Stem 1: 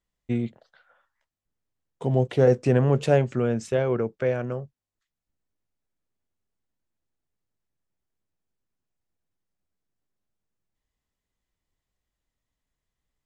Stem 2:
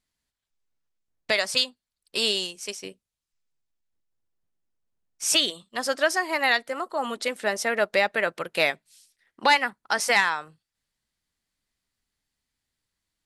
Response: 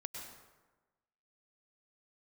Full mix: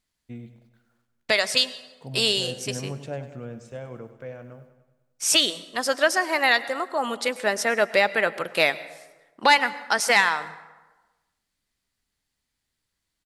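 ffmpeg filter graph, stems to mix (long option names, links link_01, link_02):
-filter_complex "[0:a]equalizer=frequency=390:width=7.7:gain=-11.5,acrusher=bits=10:mix=0:aa=0.000001,volume=-13.5dB,asplit=3[link_01][link_02][link_03];[link_02]volume=-14dB[link_04];[link_03]volume=-11dB[link_05];[1:a]volume=0.5dB,asplit=3[link_06][link_07][link_08];[link_07]volume=-9dB[link_09];[link_08]apad=whole_len=584345[link_10];[link_01][link_10]sidechaincompress=threshold=-27dB:ratio=8:attack=16:release=251[link_11];[2:a]atrim=start_sample=2205[link_12];[link_04][link_09]amix=inputs=2:normalize=0[link_13];[link_13][link_12]afir=irnorm=-1:irlink=0[link_14];[link_05]aecho=0:1:99|198|297|396|495|594|693|792:1|0.54|0.292|0.157|0.085|0.0459|0.0248|0.0134[link_15];[link_11][link_06][link_14][link_15]amix=inputs=4:normalize=0"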